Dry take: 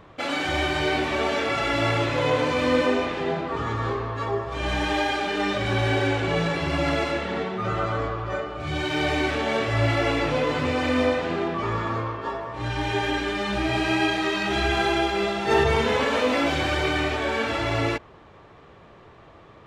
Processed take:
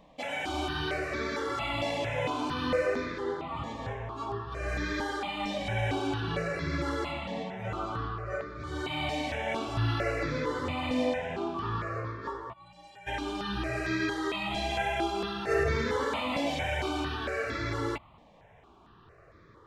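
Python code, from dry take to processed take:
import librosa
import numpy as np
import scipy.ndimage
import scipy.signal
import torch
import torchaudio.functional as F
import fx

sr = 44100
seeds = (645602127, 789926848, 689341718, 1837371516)

y = fx.stiff_resonator(x, sr, f0_hz=170.0, decay_s=0.51, stiffness=0.03, at=(12.52, 13.06), fade=0.02)
y = fx.phaser_held(y, sr, hz=4.4, low_hz=380.0, high_hz=2900.0)
y = F.gain(torch.from_numpy(y), -4.5).numpy()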